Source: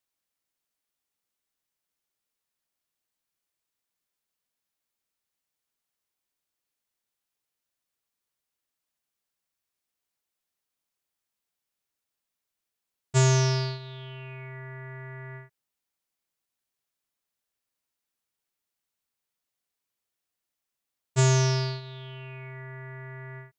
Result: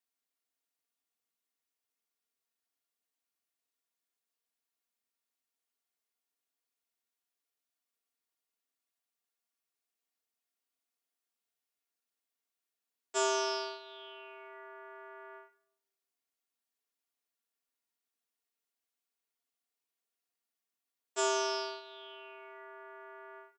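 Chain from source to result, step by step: steep high-pass 220 Hz 72 dB/octave; comb 4.3 ms, depth 54%; on a send: reverberation RT60 0.70 s, pre-delay 3 ms, DRR 7 dB; on the sum: trim -6.5 dB

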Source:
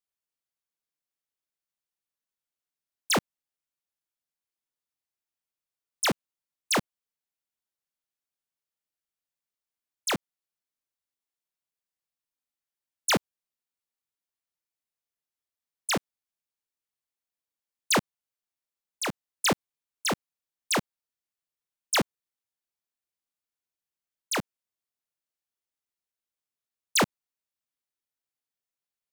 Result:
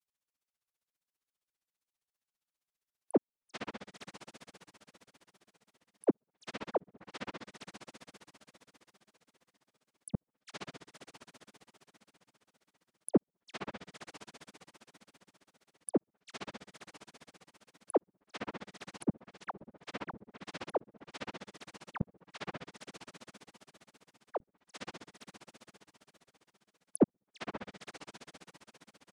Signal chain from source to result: echo that smears into a reverb 516 ms, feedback 43%, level -14.5 dB; low-pass that closes with the level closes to 470 Hz, closed at -31.5 dBFS; granulator 47 ms, grains 15 per s, spray 10 ms, pitch spread up and down by 0 st; trim +5.5 dB

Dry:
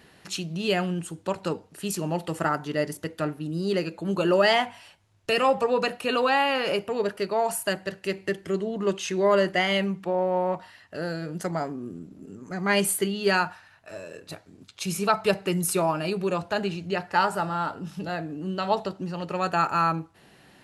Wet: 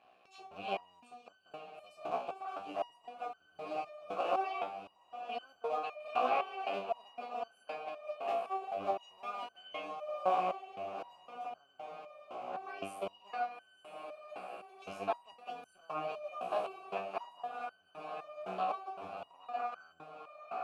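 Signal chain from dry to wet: cycle switcher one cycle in 2, muted; in parallel at 0 dB: peak limiter -19 dBFS, peak gain reduction 10 dB; on the sum: vowel filter a; echo that smears into a reverb 896 ms, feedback 65%, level -9 dB; resonator arpeggio 3.9 Hz 62–1500 Hz; trim +7 dB

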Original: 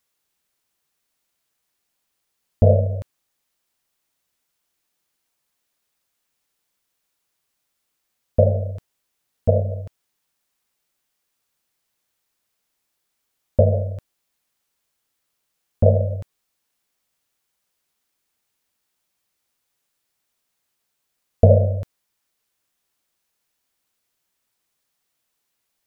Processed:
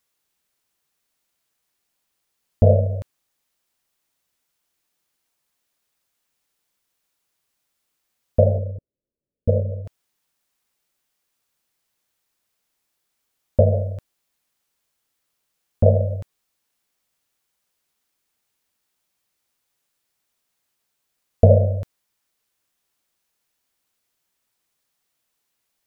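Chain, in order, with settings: 8.58–9.85 s: elliptic low-pass 570 Hz, stop band 40 dB

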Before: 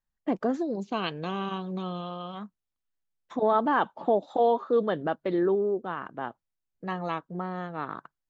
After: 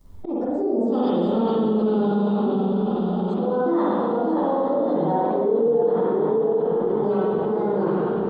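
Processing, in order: frequency-domain pitch shifter +2.5 st; FFT filter 490 Hz 0 dB, 1.1 kHz -11 dB, 2 kHz -24 dB, 3.7 kHz -12 dB; slow attack 405 ms; echo that smears into a reverb 913 ms, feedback 59%, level -12 dB; spring tank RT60 1.4 s, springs 44/56 ms, chirp 65 ms, DRR -8 dB; ever faster or slower copies 355 ms, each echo -1 st, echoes 3, each echo -6 dB; level flattener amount 70%

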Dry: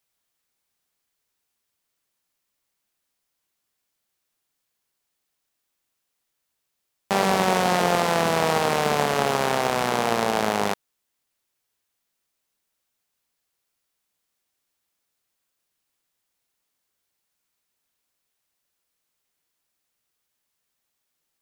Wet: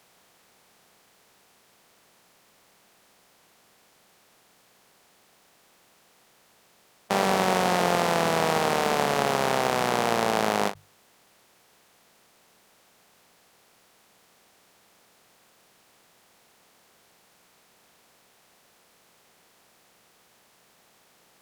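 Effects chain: spectral levelling over time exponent 0.6; hum notches 50/100/150 Hz; endings held to a fixed fall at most 300 dB/s; trim -4.5 dB

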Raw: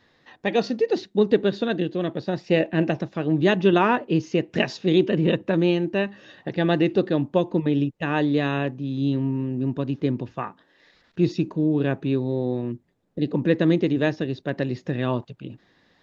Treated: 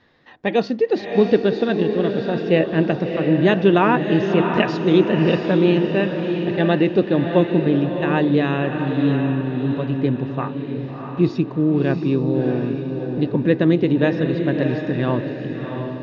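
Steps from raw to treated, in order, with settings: distance through air 130 m; echo that smears into a reverb 662 ms, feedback 45%, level -5.5 dB; trim +3.5 dB

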